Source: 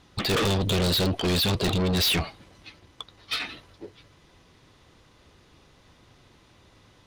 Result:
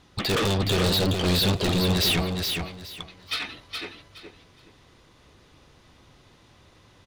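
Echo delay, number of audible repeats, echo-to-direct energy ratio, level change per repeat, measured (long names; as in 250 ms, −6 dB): 419 ms, 3, −5.0 dB, −13.0 dB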